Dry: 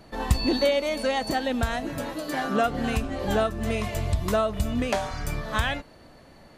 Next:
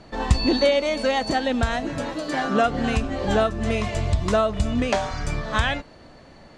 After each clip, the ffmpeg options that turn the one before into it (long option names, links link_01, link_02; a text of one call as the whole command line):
ffmpeg -i in.wav -af "lowpass=frequency=8000:width=0.5412,lowpass=frequency=8000:width=1.3066,volume=3.5dB" out.wav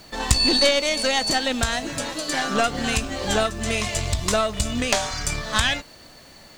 ffmpeg -i in.wav -af "acrusher=bits=11:mix=0:aa=0.000001,crystalizer=i=6.5:c=0,aeval=exprs='1.19*(cos(1*acos(clip(val(0)/1.19,-1,1)))-cos(1*PI/2))+0.168*(cos(4*acos(clip(val(0)/1.19,-1,1)))-cos(4*PI/2))':channel_layout=same,volume=-3.5dB" out.wav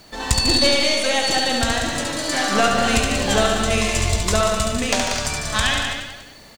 ffmpeg -i in.wav -filter_complex "[0:a]asplit=2[link_01][link_02];[link_02]aecho=0:1:70|147|231.7|324.9|427.4:0.631|0.398|0.251|0.158|0.1[link_03];[link_01][link_03]amix=inputs=2:normalize=0,dynaudnorm=framelen=600:gausssize=5:maxgain=11.5dB,asplit=2[link_04][link_05];[link_05]aecho=0:1:187:0.473[link_06];[link_04][link_06]amix=inputs=2:normalize=0,volume=-1dB" out.wav